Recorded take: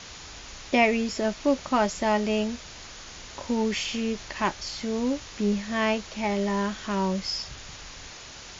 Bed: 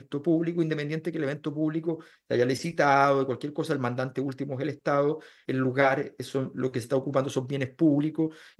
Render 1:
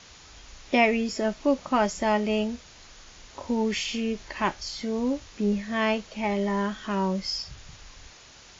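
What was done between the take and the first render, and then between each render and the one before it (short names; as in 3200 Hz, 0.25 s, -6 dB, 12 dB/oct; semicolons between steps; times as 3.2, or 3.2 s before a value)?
noise print and reduce 7 dB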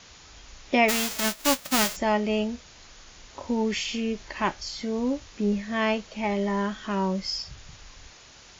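0.88–1.95 spectral whitening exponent 0.1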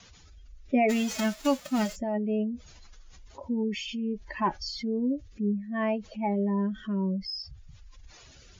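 spectral contrast raised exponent 2; rotary speaker horn 0.6 Hz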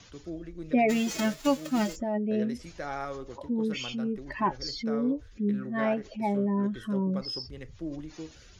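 add bed -14.5 dB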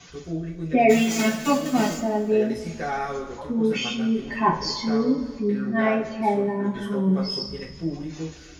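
two-slope reverb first 0.28 s, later 2.1 s, from -18 dB, DRR -7 dB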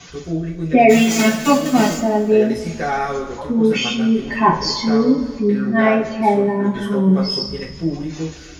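gain +7 dB; limiter -1 dBFS, peak gain reduction 2.5 dB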